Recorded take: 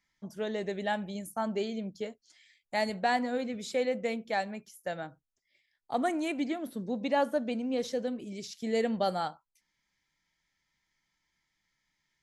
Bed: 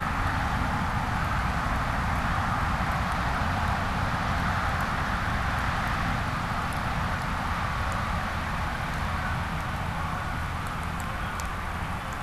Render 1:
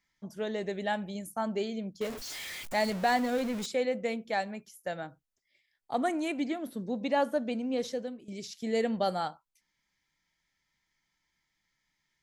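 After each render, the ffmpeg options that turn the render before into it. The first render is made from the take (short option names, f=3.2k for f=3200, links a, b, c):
-filter_complex "[0:a]asettb=1/sr,asplit=3[a][b][c];[a]atrim=end=2.014[d];[b]atrim=start=2.01:end=3.66,asetpts=PTS-STARTPTS,afade=t=in:d=0.004:c=qsin,afade=t=out:st=1.646:d=0.004:c=qsin,aeval=exprs='val(0)+0.5*0.0178*sgn(val(0))':c=same[e];[c]atrim=start=3.656[f];[d][e]acrossfade=d=0.004:c1=hsin:c2=qsin[g];[g][f]acrossfade=d=0.004:c1=qsin:c2=hsin,asplit=2[h][i];[h]atrim=end=8.28,asetpts=PTS-STARTPTS,afade=t=out:st=7.85:d=0.43:silence=0.199526[j];[i]atrim=start=8.28,asetpts=PTS-STARTPTS,afade=t=in:d=0.004:c=hsin:silence=0.199526[k];[j][k]concat=n=2:v=0:a=1"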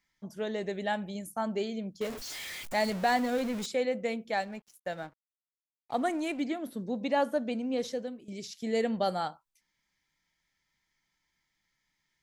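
-filter_complex "[0:a]asettb=1/sr,asplit=3[a][b][c];[a]atrim=end=4.374[d];[b]atrim=start=4.37:end=6.44,asetpts=PTS-STARTPTS,afade=t=in:d=0.004:c=qsin,afade=t=out:st=2.066:d=0.004:c=qsin,aeval=exprs='sgn(val(0))*max(abs(val(0))-0.00188,0)':c=same[e];[c]atrim=start=6.436[f];[d][e]acrossfade=d=0.004:c1=hsin:c2=qsin[g];[g][f]acrossfade=d=0.004:c1=qsin:c2=hsin"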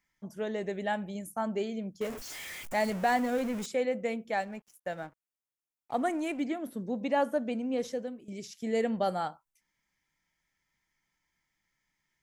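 -af "equalizer=f=4.1k:t=o:w=0.7:g=-7"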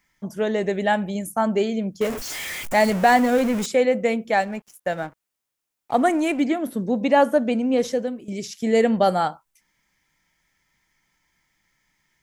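-af "volume=11dB"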